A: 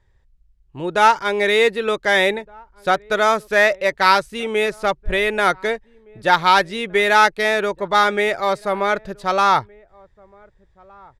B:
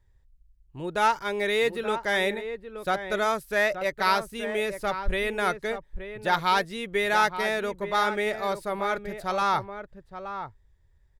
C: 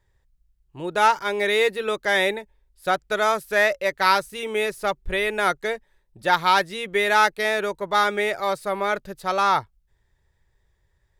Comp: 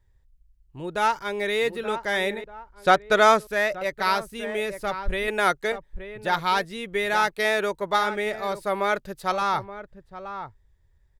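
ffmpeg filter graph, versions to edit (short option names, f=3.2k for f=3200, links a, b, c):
-filter_complex "[2:a]asplit=3[a][b][c];[1:a]asplit=5[d][e][f][g][h];[d]atrim=end=2.442[i];[0:a]atrim=start=2.438:end=3.472[j];[e]atrim=start=3.468:end=5.282[k];[a]atrim=start=5.278:end=5.722[l];[f]atrim=start=5.718:end=7.31[m];[b]atrim=start=7.27:end=7.99[n];[g]atrim=start=7.95:end=8.652[o];[c]atrim=start=8.648:end=9.322[p];[h]atrim=start=9.318[q];[i][j]acrossfade=d=0.004:c1=hsin:c2=hsin[r];[r][k]acrossfade=d=0.004:c1=hsin:c2=hsin[s];[s][l]acrossfade=d=0.004:c1=hsin:c2=hsin[t];[t][m]acrossfade=d=0.004:c1=hsin:c2=hsin[u];[u][n]acrossfade=d=0.04:c1=tri:c2=tri[v];[v][o]acrossfade=d=0.04:c1=tri:c2=tri[w];[w][p]acrossfade=d=0.004:c1=hsin:c2=hsin[x];[x][q]acrossfade=d=0.004:c1=hsin:c2=hsin"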